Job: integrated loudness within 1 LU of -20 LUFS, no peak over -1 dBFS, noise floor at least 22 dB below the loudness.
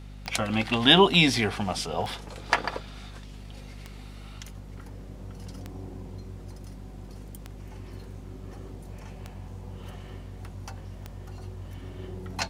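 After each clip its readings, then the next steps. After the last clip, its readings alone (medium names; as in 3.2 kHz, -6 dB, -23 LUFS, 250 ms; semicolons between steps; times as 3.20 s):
clicks found 7; hum 50 Hz; highest harmonic 250 Hz; hum level -40 dBFS; loudness -23.5 LUFS; peak level -2.0 dBFS; loudness target -20.0 LUFS
-> de-click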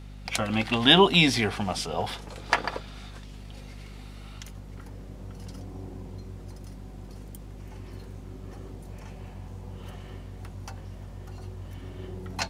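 clicks found 0; hum 50 Hz; highest harmonic 250 Hz; hum level -40 dBFS
-> hum notches 50/100/150/200/250 Hz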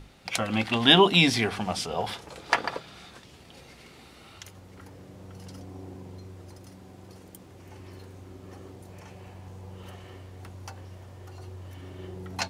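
hum not found; loudness -23.5 LUFS; peak level -2.0 dBFS; loudness target -20.0 LUFS
-> trim +3.5 dB; peak limiter -1 dBFS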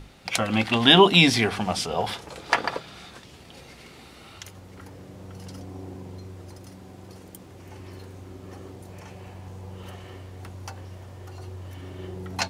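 loudness -20.5 LUFS; peak level -1.0 dBFS; noise floor -47 dBFS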